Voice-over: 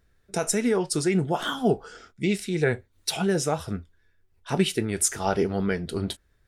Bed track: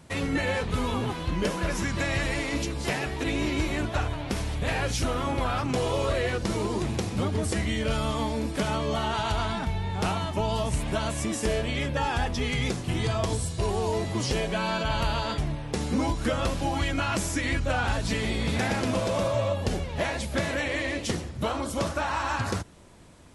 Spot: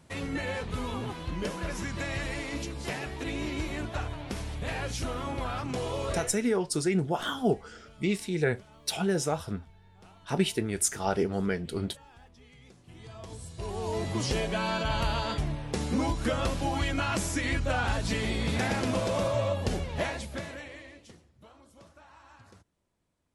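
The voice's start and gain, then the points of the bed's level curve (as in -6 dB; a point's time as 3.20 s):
5.80 s, -3.5 dB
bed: 6.18 s -6 dB
6.43 s -27.5 dB
12.64 s -27.5 dB
14.07 s -2 dB
20.00 s -2 dB
21.26 s -26.5 dB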